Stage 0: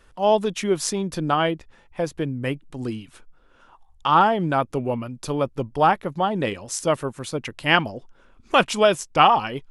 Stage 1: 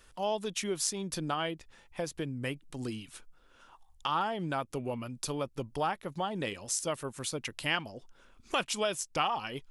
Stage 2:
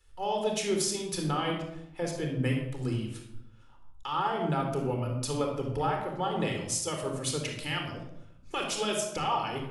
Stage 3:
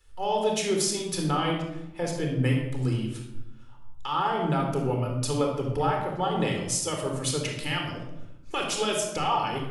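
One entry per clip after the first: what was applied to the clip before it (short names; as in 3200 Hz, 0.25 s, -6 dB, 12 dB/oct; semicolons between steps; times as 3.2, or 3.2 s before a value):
high shelf 2800 Hz +11 dB; compressor 2:1, threshold -28 dBFS, peak gain reduction 11.5 dB; gain -6.5 dB
limiter -23.5 dBFS, peak gain reduction 10.5 dB; reverb RT60 1.0 s, pre-delay 29 ms, DRR 1.5 dB; three-band expander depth 40%
shoebox room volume 330 m³, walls mixed, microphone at 0.36 m; gain +3 dB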